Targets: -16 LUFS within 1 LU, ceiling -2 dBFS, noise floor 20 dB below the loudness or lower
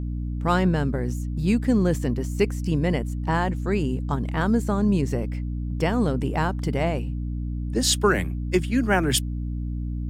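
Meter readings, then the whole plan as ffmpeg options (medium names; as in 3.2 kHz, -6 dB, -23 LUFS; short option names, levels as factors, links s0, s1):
hum 60 Hz; highest harmonic 300 Hz; hum level -26 dBFS; loudness -24.5 LUFS; peak level -7.0 dBFS; loudness target -16.0 LUFS
-> -af "bandreject=f=60:t=h:w=4,bandreject=f=120:t=h:w=4,bandreject=f=180:t=h:w=4,bandreject=f=240:t=h:w=4,bandreject=f=300:t=h:w=4"
-af "volume=2.66,alimiter=limit=0.794:level=0:latency=1"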